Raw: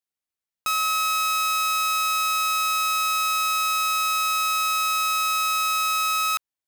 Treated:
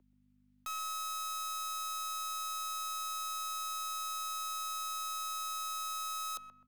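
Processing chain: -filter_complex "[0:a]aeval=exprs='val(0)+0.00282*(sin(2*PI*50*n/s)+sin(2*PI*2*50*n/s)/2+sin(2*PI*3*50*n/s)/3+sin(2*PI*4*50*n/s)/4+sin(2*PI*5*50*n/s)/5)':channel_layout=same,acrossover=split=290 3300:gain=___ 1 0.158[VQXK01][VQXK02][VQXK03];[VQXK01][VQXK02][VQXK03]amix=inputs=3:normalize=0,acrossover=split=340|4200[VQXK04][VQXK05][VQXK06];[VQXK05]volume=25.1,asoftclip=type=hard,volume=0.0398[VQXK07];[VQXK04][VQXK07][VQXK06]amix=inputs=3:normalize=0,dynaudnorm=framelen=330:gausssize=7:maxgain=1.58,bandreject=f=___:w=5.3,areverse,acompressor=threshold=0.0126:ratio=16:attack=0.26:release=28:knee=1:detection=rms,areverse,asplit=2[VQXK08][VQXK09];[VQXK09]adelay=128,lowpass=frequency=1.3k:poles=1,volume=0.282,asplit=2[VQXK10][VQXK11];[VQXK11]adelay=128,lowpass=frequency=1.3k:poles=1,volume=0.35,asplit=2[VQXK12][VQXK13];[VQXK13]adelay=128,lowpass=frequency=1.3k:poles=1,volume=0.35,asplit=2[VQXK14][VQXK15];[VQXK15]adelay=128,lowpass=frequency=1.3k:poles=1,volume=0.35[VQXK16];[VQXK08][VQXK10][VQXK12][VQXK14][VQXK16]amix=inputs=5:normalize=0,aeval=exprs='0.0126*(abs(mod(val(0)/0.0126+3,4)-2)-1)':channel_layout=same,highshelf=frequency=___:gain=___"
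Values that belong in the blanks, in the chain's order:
0.1, 470, 4.1k, 11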